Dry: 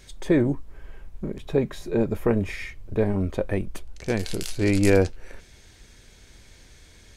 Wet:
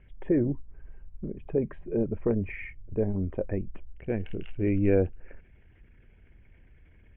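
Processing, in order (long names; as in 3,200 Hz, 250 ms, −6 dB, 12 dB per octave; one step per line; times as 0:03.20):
spectral envelope exaggerated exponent 1.5
Butterworth low-pass 3,000 Hz 96 dB per octave
level −4.5 dB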